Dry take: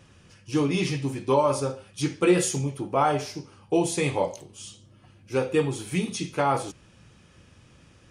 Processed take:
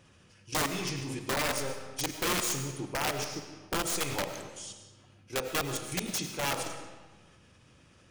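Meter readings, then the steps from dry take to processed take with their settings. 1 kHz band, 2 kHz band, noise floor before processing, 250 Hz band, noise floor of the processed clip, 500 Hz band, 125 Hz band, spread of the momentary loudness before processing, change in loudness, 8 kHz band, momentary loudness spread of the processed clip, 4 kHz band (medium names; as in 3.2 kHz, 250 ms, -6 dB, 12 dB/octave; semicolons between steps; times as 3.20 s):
-8.0 dB, -0.5 dB, -56 dBFS, -11.0 dB, -60 dBFS, -11.5 dB, -9.5 dB, 14 LU, -6.5 dB, 0.0 dB, 12 LU, +2.0 dB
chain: bass shelf 190 Hz -3.5 dB; level held to a coarse grid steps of 12 dB; peak limiter -21 dBFS, peak gain reduction 9.5 dB; dynamic bell 6.3 kHz, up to +7 dB, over -55 dBFS, Q 0.99; integer overflow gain 24 dB; algorithmic reverb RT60 1.3 s, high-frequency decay 0.8×, pre-delay 65 ms, DRR 8 dB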